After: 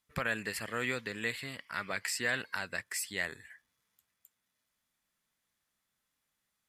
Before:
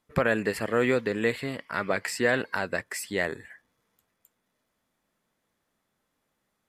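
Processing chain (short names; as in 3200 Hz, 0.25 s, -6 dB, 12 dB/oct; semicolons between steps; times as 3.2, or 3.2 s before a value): passive tone stack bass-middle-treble 5-5-5; gain +5.5 dB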